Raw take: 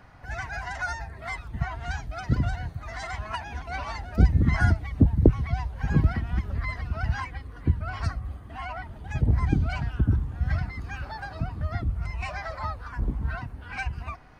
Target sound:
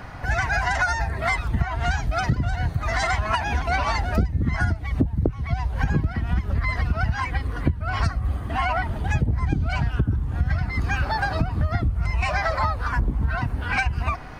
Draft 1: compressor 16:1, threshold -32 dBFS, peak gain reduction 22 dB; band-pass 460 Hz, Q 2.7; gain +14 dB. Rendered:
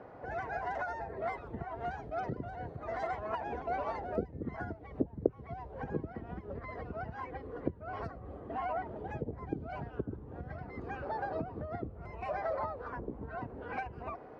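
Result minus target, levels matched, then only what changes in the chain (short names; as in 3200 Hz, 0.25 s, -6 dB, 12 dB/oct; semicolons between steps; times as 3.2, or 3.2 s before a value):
500 Hz band +10.0 dB
remove: band-pass 460 Hz, Q 2.7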